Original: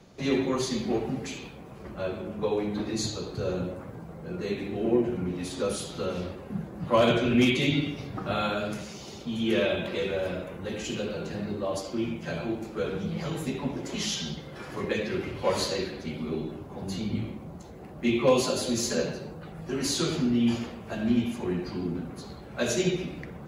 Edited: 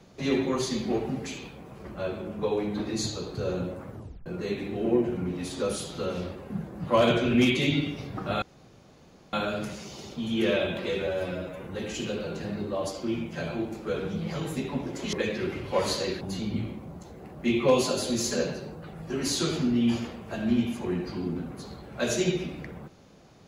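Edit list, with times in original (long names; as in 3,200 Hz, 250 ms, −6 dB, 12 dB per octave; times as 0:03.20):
0:03.91: tape stop 0.35 s
0:08.42: splice in room tone 0.91 s
0:10.16–0:10.54: time-stretch 1.5×
0:14.03–0:14.84: remove
0:15.92–0:16.80: remove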